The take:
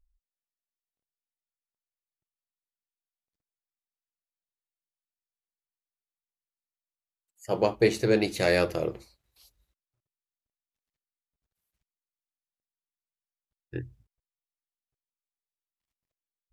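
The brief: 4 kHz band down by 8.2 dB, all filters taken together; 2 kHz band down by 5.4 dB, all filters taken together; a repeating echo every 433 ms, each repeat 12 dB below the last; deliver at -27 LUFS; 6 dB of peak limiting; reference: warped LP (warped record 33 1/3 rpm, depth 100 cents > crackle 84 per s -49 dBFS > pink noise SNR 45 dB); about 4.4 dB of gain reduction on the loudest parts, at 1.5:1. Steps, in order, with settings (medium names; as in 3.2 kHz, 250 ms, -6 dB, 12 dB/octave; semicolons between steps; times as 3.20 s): peaking EQ 2 kHz -4.5 dB; peaking EQ 4 kHz -8.5 dB; compression 1.5:1, threshold -29 dBFS; peak limiter -20.5 dBFS; feedback delay 433 ms, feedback 25%, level -12 dB; warped record 33 1/3 rpm, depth 100 cents; crackle 84 per s -49 dBFS; pink noise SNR 45 dB; trim +7.5 dB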